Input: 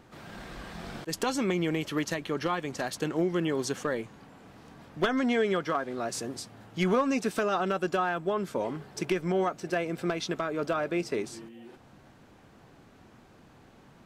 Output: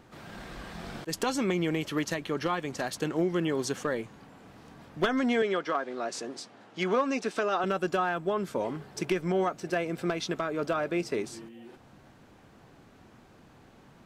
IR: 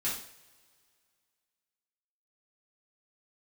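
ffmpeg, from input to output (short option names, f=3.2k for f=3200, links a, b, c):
-filter_complex "[0:a]asettb=1/sr,asplit=3[a][b][c];[a]atrim=end=5.424[d];[b]atrim=start=5.42:end=7.64,asetpts=PTS-STARTPTS,afade=t=in:d=0.004:c=qsin,afade=t=out:st=2.216:d=0.004:c=qsin,highpass=270,lowpass=6.7k[e];[c]atrim=start=7.636[f];[d][e]acrossfade=d=0.004:c1=hsin:c2=qsin[g];[g][f]acrossfade=d=0.004:c1=qsin:c2=hsin"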